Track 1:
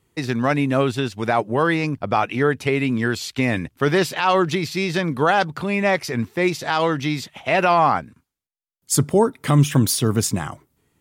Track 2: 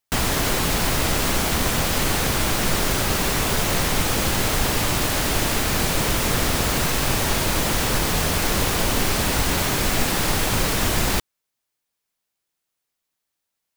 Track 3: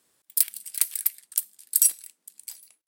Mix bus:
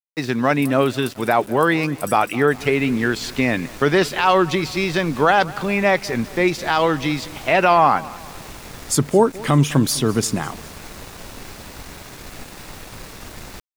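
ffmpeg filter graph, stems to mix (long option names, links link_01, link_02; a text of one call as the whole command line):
ffmpeg -i stem1.wav -i stem2.wav -i stem3.wav -filter_complex "[0:a]equalizer=frequency=69:width_type=o:width=1.3:gain=-12.5,volume=2.5dB,asplit=3[link_01][link_02][link_03];[link_02]volume=-20dB[link_04];[1:a]bandreject=frequency=3100:width=12,adelay=2400,volume=-14.5dB[link_05];[2:a]adelay=250,volume=-12dB,asplit=2[link_06][link_07];[link_07]volume=-8.5dB[link_08];[link_03]apad=whole_len=712949[link_09];[link_05][link_09]sidechaincompress=threshold=-19dB:ratio=8:attack=41:release=591[link_10];[link_04][link_08]amix=inputs=2:normalize=0,aecho=0:1:204|408|612|816|1020|1224|1428:1|0.5|0.25|0.125|0.0625|0.0312|0.0156[link_11];[link_01][link_10][link_06][link_11]amix=inputs=4:normalize=0,highshelf=frequency=9300:gain=-7.5,aeval=exprs='val(0)*gte(abs(val(0)),0.0141)':channel_layout=same" out.wav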